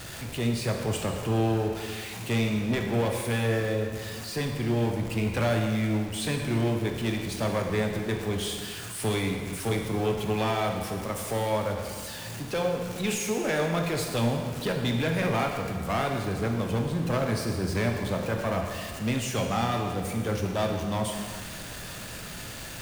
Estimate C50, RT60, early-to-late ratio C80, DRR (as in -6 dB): 4.0 dB, 1.9 s, 5.0 dB, 2.0 dB